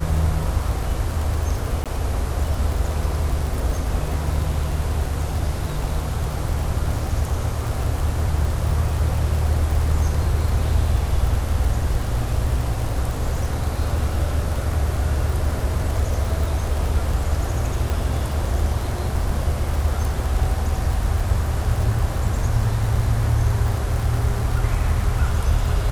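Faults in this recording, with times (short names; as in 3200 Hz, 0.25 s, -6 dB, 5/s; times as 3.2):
crackle 49/s -25 dBFS
1.84–1.86 gap 17 ms
17.9 pop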